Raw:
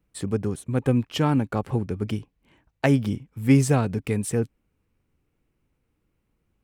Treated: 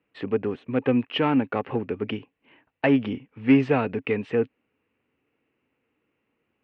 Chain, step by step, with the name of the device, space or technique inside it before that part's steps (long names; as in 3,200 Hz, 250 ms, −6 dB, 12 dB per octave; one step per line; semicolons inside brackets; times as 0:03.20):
overdrive pedal into a guitar cabinet (mid-hump overdrive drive 16 dB, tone 1,300 Hz, clips at −6 dBFS; loudspeaker in its box 98–3,800 Hz, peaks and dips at 170 Hz −4 dB, 260 Hz +6 dB, 450 Hz +4 dB, 1,900 Hz +5 dB, 2,700 Hz +10 dB)
level −4.5 dB